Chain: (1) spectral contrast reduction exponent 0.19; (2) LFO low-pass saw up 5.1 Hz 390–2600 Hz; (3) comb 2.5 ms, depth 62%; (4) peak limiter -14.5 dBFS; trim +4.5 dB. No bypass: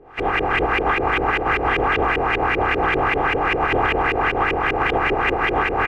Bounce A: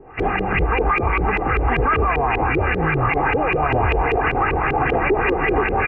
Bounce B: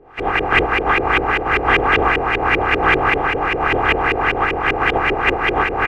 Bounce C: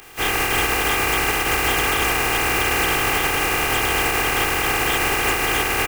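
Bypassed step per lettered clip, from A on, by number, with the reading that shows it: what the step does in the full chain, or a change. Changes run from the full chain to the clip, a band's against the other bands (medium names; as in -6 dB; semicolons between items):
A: 1, 4 kHz band -7.5 dB; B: 4, mean gain reduction 2.0 dB; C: 2, 4 kHz band +10.5 dB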